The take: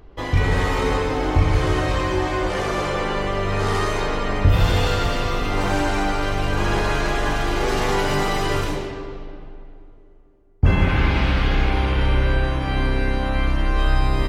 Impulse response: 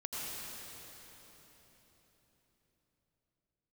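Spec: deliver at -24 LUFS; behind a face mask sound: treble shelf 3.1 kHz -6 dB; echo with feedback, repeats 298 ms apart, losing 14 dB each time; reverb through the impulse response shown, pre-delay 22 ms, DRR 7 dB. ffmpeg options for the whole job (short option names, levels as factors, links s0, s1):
-filter_complex "[0:a]aecho=1:1:298|596:0.2|0.0399,asplit=2[s0][s1];[1:a]atrim=start_sample=2205,adelay=22[s2];[s1][s2]afir=irnorm=-1:irlink=0,volume=0.335[s3];[s0][s3]amix=inputs=2:normalize=0,highshelf=f=3100:g=-6,volume=0.708"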